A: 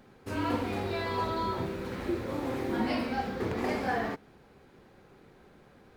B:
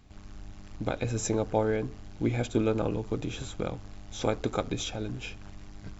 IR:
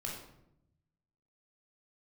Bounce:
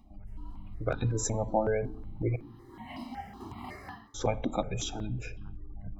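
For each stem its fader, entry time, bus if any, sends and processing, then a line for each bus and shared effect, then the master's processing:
−9.5 dB, 0.00 s, no send, comb filter 1 ms, depth 89%; automatic ducking −19 dB, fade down 0.25 s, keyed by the second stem
+1.5 dB, 0.00 s, muted 0:02.36–0:04.14, send −14 dB, gate on every frequency bin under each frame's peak −25 dB strong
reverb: on, RT60 0.80 s, pre-delay 16 ms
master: step-sequenced phaser 5.4 Hz 430–2,200 Hz

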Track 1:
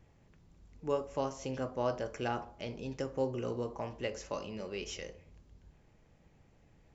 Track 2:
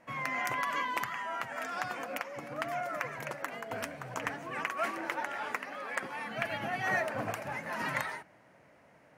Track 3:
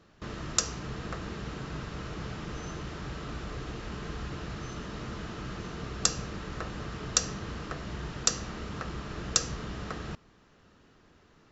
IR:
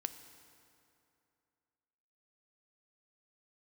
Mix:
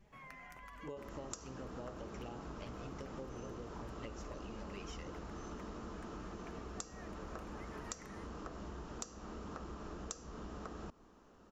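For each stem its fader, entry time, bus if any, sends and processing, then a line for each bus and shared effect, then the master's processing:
+1.5 dB, 0.00 s, no send, flanger swept by the level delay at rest 5.4 ms, full sweep at −31.5 dBFS; downward compressor 2 to 1, threshold −44 dBFS, peak gain reduction 9 dB
−13.5 dB, 0.05 s, no send, automatic ducking −8 dB, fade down 0.50 s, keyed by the first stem
−8.5 dB, 0.75 s, no send, octave-band graphic EQ 125/250/1,000/2,000/4,000 Hz −11/+3/+3/−9/−8 dB; automatic gain control gain up to 8 dB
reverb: not used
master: downward compressor 6 to 1, threshold −43 dBFS, peak gain reduction 17.5 dB

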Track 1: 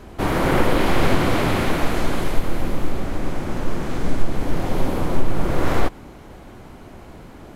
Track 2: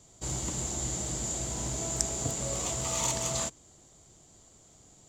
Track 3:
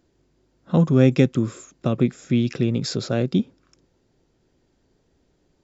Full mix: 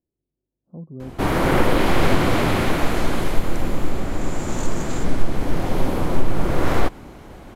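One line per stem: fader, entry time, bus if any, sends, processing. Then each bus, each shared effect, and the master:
+0.5 dB, 1.00 s, no send, no processing
0:04.10 −19.5 dB → 0:04.33 −7.5 dB, 1.55 s, no send, no processing
−19.0 dB, 0.00 s, no send, Bessel low-pass filter 550 Hz, order 8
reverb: not used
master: no processing

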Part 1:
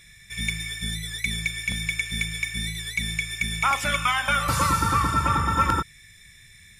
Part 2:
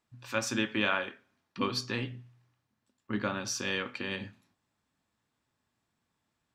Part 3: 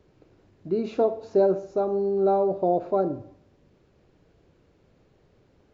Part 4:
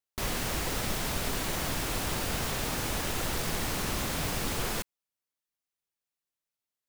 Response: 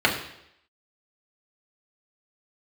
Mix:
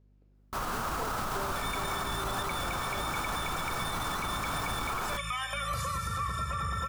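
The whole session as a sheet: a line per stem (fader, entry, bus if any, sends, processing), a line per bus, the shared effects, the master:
−6.5 dB, 1.25 s, no send, downward compressor, threshold −25 dBFS, peak gain reduction 9 dB; comb filter 1.7 ms, depth 86%
muted
−17.0 dB, 0.00 s, no send, mains hum 50 Hz, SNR 18 dB
0.0 dB, 0.35 s, no send, drawn EQ curve 500 Hz 0 dB, 1,300 Hz +14 dB, 1,900 Hz −3 dB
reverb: not used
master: brickwall limiter −24 dBFS, peak gain reduction 9.5 dB

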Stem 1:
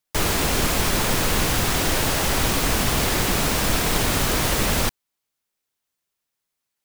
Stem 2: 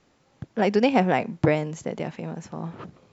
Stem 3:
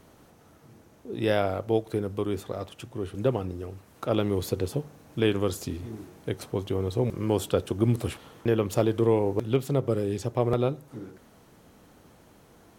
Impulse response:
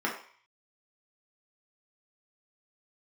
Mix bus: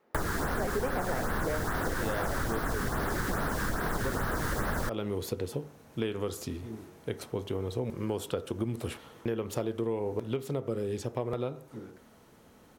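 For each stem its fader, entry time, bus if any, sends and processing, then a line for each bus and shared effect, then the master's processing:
0.0 dB, 0.00 s, no send, high shelf with overshoot 2,000 Hz −7.5 dB, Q 3; auto-filter notch sine 2.4 Hz 600–7,900 Hz
−2.5 dB, 0.00 s, send −12 dB, resonant band-pass 600 Hz, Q 0.73
−3.0 dB, 0.80 s, send −19 dB, no processing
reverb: on, RT60 0.50 s, pre-delay 3 ms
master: downward compressor 6 to 1, threshold −28 dBFS, peak gain reduction 13 dB

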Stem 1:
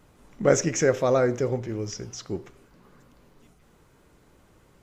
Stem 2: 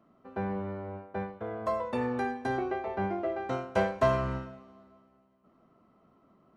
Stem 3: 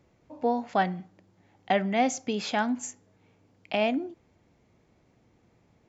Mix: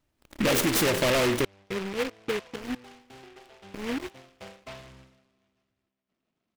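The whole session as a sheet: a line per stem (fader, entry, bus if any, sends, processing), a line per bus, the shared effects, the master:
−10.0 dB, 0.00 s, muted 0:01.45–0:02.62, bus A, no send, comb filter 3.2 ms, depth 44%
−18.0 dB, 0.65 s, no bus, no send, low-pass filter 2,100 Hz 6 dB per octave
−2.0 dB, 0.00 s, bus A, no send, Chebyshev low-pass with heavy ripple 500 Hz, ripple 9 dB; parametric band 190 Hz −8 dB 0.71 octaves; flanger whose copies keep moving one way falling 0.34 Hz
bus A: 0.0 dB, leveller curve on the samples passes 5; downward compressor, threshold −22 dBFS, peak gain reduction 5 dB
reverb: not used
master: parametric band 3,900 Hz +7.5 dB 0.6 octaves; short delay modulated by noise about 1,800 Hz, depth 0.17 ms

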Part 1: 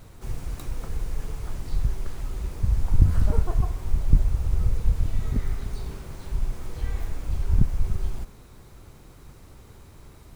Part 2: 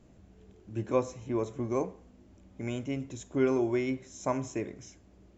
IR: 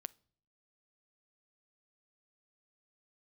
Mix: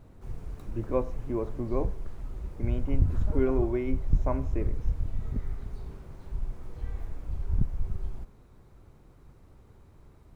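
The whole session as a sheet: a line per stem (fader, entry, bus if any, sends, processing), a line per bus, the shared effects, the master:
−6.5 dB, 0.00 s, no send, no processing
0.0 dB, 0.00 s, no send, low-pass filter 3,600 Hz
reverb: not used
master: high-shelf EQ 2,200 Hz −12 dB

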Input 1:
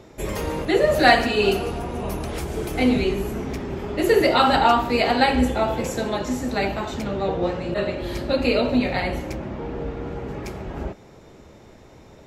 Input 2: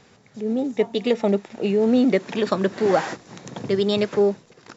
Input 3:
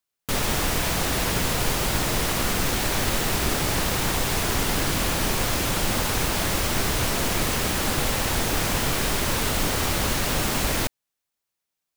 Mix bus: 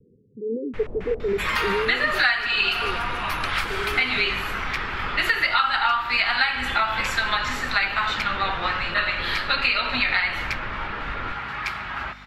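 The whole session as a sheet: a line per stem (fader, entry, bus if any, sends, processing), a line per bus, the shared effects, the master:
+2.5 dB, 1.20 s, no send, drawn EQ curve 130 Hz 0 dB, 470 Hz −18 dB, 1,300 Hz +14 dB, 4,400 Hz +9 dB, 6,400 Hz −4 dB; mains hum 50 Hz, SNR 20 dB; bass and treble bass −13 dB, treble −1 dB
0:01.74 −3 dB → 0:02.03 −13.5 dB, 0.00 s, no send, spectral envelope exaggerated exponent 3; Butterworth low-pass 500 Hz 96 dB per octave
−15.5 dB, 0.45 s, no send, low-shelf EQ 73 Hz +11.5 dB; auto-filter low-pass square 3.6 Hz 520–2,100 Hz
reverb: not used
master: downward compressor 8 to 1, threshold −18 dBFS, peak gain reduction 18.5 dB

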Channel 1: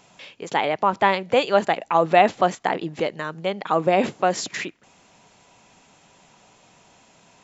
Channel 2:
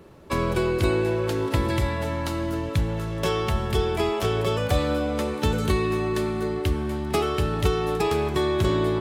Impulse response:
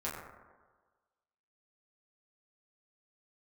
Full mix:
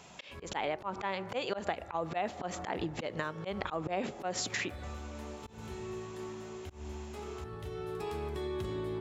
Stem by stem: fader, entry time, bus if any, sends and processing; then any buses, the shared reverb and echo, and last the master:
0.0 dB, 0.00 s, send −22 dB, no processing
−15.5 dB, 0.00 s, send −8 dB, brickwall limiter −15.5 dBFS, peak gain reduction 5.5 dB; automatic ducking −15 dB, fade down 0.30 s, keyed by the first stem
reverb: on, RT60 1.4 s, pre-delay 6 ms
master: volume swells 170 ms; downward compressor 5 to 1, threshold −32 dBFS, peak gain reduction 15 dB

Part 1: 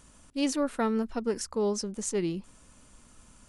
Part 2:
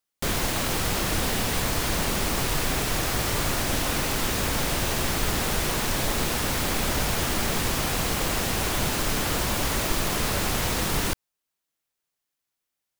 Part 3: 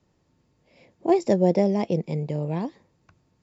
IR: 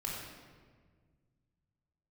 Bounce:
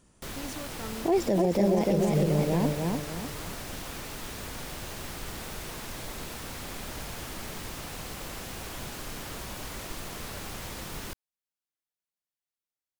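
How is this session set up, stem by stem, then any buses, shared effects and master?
−8.5 dB, 0.00 s, no send, no echo send, brickwall limiter −24 dBFS, peak gain reduction 7.5 dB
−13.0 dB, 0.00 s, no send, no echo send, pitch vibrato 6.6 Hz 97 cents
+2.0 dB, 0.00 s, no send, echo send −4 dB, no processing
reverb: not used
echo: repeating echo 299 ms, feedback 39%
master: brickwall limiter −15.5 dBFS, peak gain reduction 11.5 dB

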